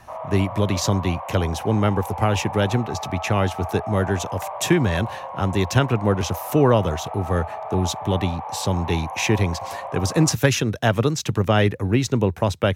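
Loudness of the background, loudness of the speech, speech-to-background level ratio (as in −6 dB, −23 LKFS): −32.5 LKFS, −22.5 LKFS, 10.0 dB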